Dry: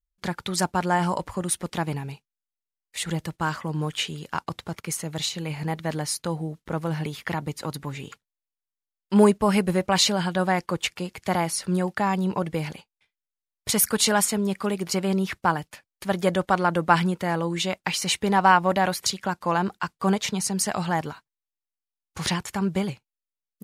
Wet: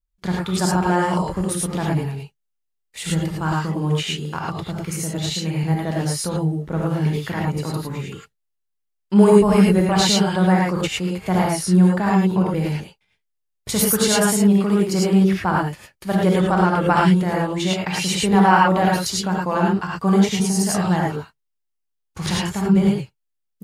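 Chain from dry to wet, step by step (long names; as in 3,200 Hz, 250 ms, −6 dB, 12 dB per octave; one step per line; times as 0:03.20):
low-shelf EQ 500 Hz +7 dB
reverb whose tail is shaped and stops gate 130 ms rising, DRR −3.5 dB
level −3 dB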